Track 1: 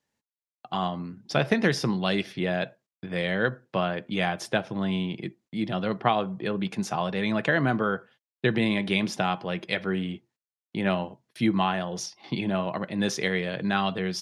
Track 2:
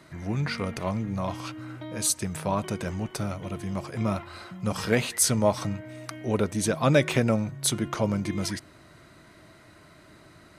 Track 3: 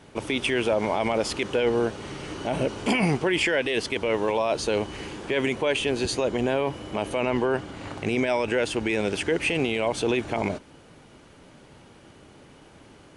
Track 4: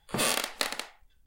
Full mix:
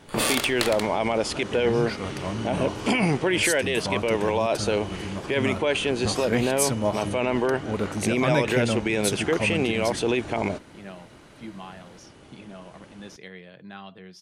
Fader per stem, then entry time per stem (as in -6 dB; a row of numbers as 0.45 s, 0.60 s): -16.0 dB, -2.5 dB, +0.5 dB, +2.5 dB; 0.00 s, 1.40 s, 0.00 s, 0.00 s